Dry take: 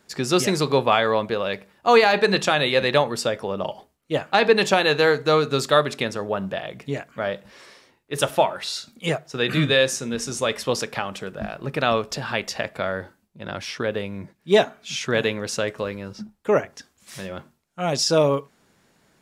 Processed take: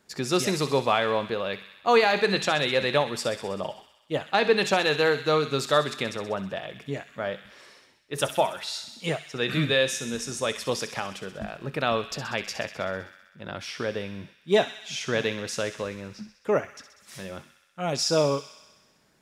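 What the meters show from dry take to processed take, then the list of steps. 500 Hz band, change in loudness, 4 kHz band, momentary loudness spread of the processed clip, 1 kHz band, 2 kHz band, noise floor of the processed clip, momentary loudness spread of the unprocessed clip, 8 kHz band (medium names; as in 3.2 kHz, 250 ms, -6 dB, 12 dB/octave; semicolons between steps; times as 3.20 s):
-4.5 dB, -4.5 dB, -3.5 dB, 15 LU, -4.5 dB, -4.0 dB, -62 dBFS, 15 LU, -3.5 dB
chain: feedback echo behind a high-pass 64 ms, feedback 72%, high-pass 1.9 kHz, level -9.5 dB; trim -4.5 dB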